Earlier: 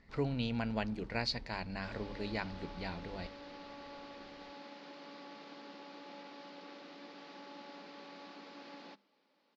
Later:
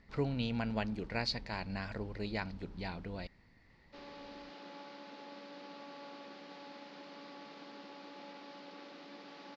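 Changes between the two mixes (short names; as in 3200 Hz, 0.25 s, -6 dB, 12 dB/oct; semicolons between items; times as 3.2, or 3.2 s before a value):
background: entry +2.10 s; master: remove notches 50/100/150/200 Hz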